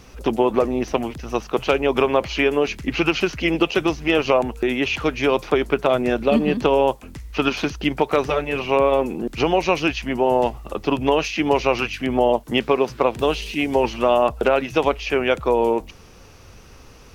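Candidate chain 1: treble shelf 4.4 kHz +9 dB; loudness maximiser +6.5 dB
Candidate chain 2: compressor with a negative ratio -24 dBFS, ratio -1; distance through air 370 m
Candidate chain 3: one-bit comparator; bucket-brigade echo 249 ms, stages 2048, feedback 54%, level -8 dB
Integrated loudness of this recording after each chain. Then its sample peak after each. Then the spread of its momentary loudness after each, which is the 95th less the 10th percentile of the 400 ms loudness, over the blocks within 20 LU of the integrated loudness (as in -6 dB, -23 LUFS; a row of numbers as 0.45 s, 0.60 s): -14.5 LUFS, -27.0 LUFS, -20.0 LUFS; -1.0 dBFS, -8.5 dBFS, -14.5 dBFS; 5 LU, 5 LU, 1 LU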